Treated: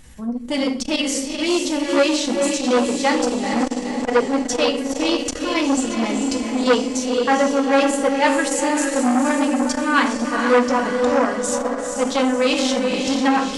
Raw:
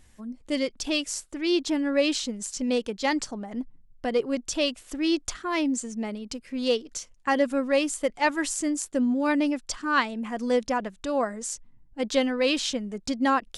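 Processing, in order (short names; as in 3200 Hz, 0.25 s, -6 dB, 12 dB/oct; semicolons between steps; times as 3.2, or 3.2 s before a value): in parallel at 0 dB: vocal rider; on the sum: diffused feedback echo 0.466 s, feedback 54%, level -4.5 dB; reverb RT60 0.60 s, pre-delay 3 ms, DRR 2 dB; core saturation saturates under 1100 Hz; gain -1 dB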